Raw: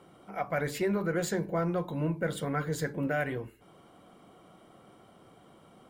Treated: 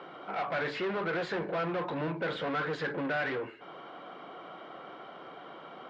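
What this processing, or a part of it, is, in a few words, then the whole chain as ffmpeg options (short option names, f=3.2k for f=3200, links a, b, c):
overdrive pedal into a guitar cabinet: -filter_complex "[0:a]asplit=2[a][b];[b]highpass=f=720:p=1,volume=27dB,asoftclip=type=tanh:threshold=-19.5dB[c];[a][c]amix=inputs=2:normalize=0,lowpass=f=2.7k:p=1,volume=-6dB,highpass=100,equalizer=f=100:t=q:w=4:g=-9,equalizer=f=210:t=q:w=4:g=-5,equalizer=f=1.5k:t=q:w=4:g=3,lowpass=f=4.3k:w=0.5412,lowpass=f=4.3k:w=1.3066,volume=-6dB"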